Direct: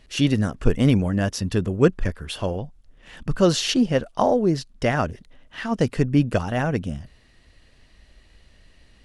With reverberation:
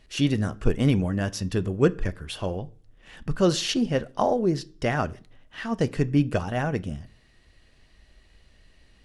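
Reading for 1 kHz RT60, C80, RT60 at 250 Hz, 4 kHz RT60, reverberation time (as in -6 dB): 0.40 s, 27.5 dB, 0.55 s, 0.45 s, 0.45 s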